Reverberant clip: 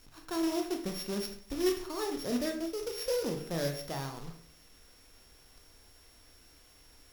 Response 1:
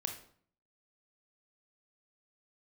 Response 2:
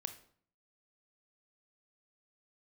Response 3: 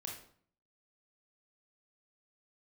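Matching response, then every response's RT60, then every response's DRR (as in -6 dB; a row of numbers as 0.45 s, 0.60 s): 1; 0.55 s, 0.55 s, 0.55 s; 3.5 dB, 8.0 dB, -1.5 dB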